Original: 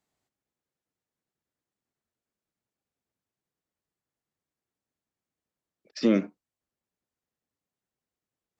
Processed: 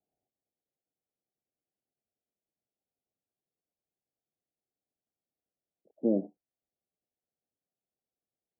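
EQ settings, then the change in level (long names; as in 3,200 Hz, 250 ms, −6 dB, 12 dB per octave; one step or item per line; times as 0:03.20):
Butterworth low-pass 810 Hz 96 dB per octave
low-shelf EQ 340 Hz −9 dB
0.0 dB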